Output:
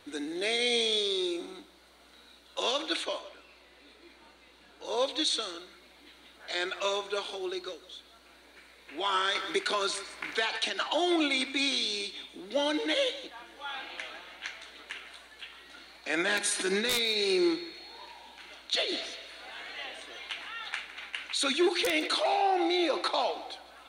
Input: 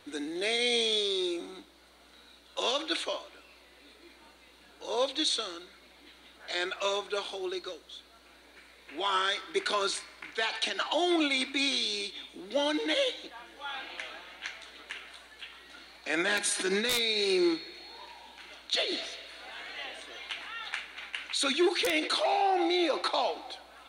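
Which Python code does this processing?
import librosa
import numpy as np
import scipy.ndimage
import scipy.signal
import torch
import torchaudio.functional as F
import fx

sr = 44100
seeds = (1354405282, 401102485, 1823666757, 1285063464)

y = fx.high_shelf(x, sr, hz=8900.0, db=-7.5, at=(3.05, 4.86))
y = y + 10.0 ** (-17.5 / 20.0) * np.pad(y, (int(158 * sr / 1000.0), 0))[:len(y)]
y = fx.band_squash(y, sr, depth_pct=70, at=(9.35, 10.58))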